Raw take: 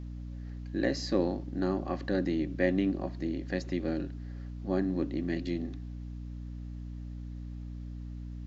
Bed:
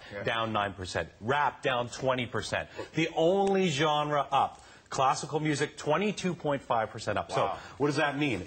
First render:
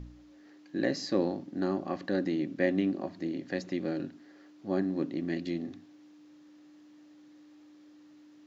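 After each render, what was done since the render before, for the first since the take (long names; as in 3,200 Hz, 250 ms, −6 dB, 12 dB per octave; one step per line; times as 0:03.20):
hum removal 60 Hz, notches 4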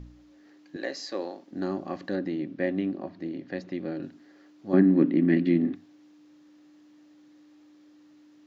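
0:00.76–0:01.51: high-pass filter 480 Hz
0:02.15–0:04.03: high-frequency loss of the air 150 metres
0:04.73–0:05.75: drawn EQ curve 120 Hz 0 dB, 170 Hz +12 dB, 260 Hz +13 dB, 680 Hz +3 dB, 2,000 Hz +9 dB, 3,400 Hz +1 dB, 8,400 Hz −20 dB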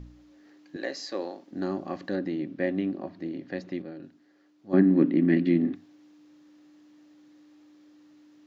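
0:03.82–0:04.91: expander for the loud parts, over −32 dBFS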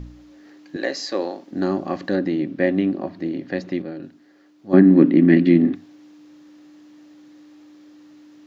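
level +8.5 dB
brickwall limiter −2 dBFS, peak gain reduction 1.5 dB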